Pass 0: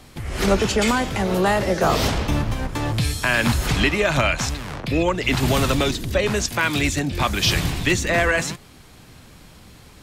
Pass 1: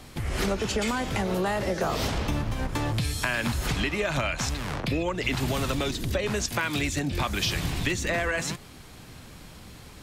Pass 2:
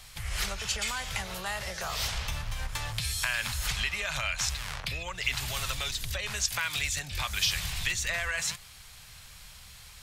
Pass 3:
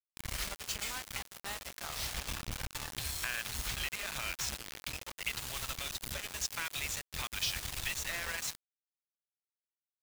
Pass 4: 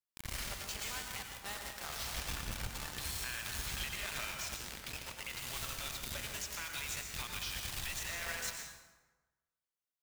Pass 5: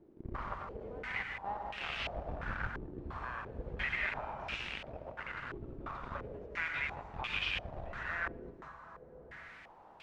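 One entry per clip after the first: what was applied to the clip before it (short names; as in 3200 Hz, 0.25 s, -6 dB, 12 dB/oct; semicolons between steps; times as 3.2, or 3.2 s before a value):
compressor, threshold -24 dBFS, peak gain reduction 11.5 dB
passive tone stack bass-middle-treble 10-0-10; gain +3 dB
bit-crush 5-bit; gain -7.5 dB
limiter -28.5 dBFS, peak gain reduction 9 dB; plate-style reverb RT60 1.2 s, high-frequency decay 0.65×, pre-delay 85 ms, DRR 2.5 dB; gain -2.5 dB
delta modulation 64 kbps, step -47.5 dBFS; stepped low-pass 2.9 Hz 360–2700 Hz; gain +1 dB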